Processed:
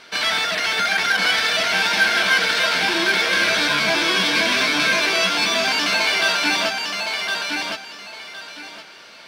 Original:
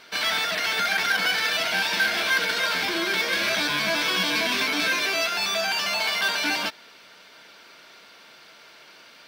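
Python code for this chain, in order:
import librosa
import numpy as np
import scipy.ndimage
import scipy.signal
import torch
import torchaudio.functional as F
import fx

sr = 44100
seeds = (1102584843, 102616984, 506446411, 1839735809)

y = scipy.signal.sosfilt(scipy.signal.butter(2, 11000.0, 'lowpass', fs=sr, output='sos'), x)
y = fx.echo_feedback(y, sr, ms=1063, feedback_pct=25, wet_db=-4.0)
y = y * 10.0 ** (4.0 / 20.0)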